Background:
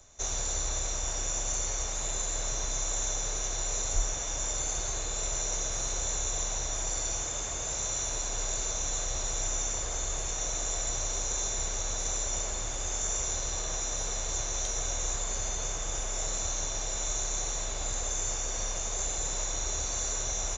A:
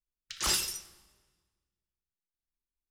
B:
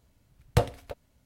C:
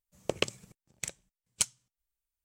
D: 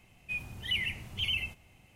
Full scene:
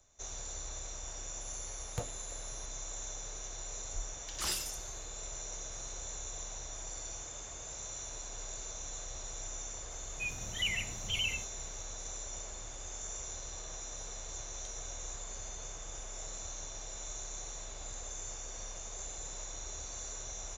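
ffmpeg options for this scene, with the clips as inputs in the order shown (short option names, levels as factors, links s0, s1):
-filter_complex "[0:a]volume=0.282[s0];[2:a]aeval=exprs='val(0)+0.00708*sin(2*PI*10000*n/s)':c=same,atrim=end=1.25,asetpts=PTS-STARTPTS,volume=0.158,afade=t=in:d=0.004:c=hsin,afade=t=out:st=1.246:d=0.004:c=hsin,adelay=1410[s1];[1:a]atrim=end=2.9,asetpts=PTS-STARTPTS,volume=0.447,afade=t=in:d=0.004:c=hsin,afade=t=out:st=2.896:d=0.004:c=hsin,adelay=3980[s2];[4:a]atrim=end=1.95,asetpts=PTS-STARTPTS,volume=0.75,afade=t=in:d=0.004:c=hsin,afade=t=out:st=1.946:d=0.004:c=hsin,adelay=9910[s3];[s0][s1][s2][s3]amix=inputs=4:normalize=0"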